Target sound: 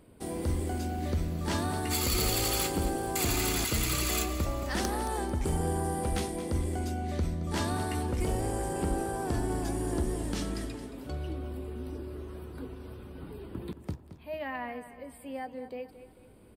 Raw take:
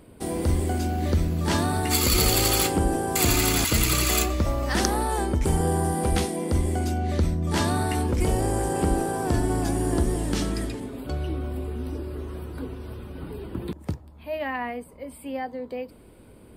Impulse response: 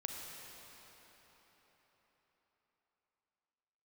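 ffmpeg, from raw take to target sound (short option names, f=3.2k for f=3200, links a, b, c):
-filter_complex "[0:a]asoftclip=type=hard:threshold=-15.5dB,asplit=2[a][b];[b]aecho=0:1:222|444|666|888:0.224|0.0918|0.0376|0.0154[c];[a][c]amix=inputs=2:normalize=0,volume=-7dB"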